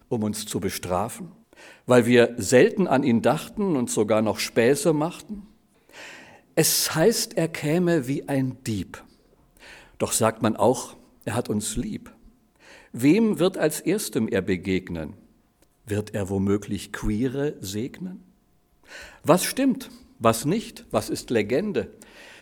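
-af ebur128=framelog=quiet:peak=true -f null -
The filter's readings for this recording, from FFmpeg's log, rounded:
Integrated loudness:
  I:         -23.5 LUFS
  Threshold: -34.7 LUFS
Loudness range:
  LRA:         6.6 LU
  Threshold: -44.7 LUFS
  LRA low:   -28.1 LUFS
  LRA high:  -21.4 LUFS
True peak:
  Peak:       -2.3 dBFS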